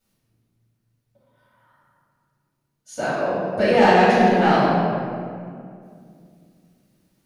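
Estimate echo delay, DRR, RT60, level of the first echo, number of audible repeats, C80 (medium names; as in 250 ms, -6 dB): no echo, -12.5 dB, 2.2 s, no echo, no echo, -0.5 dB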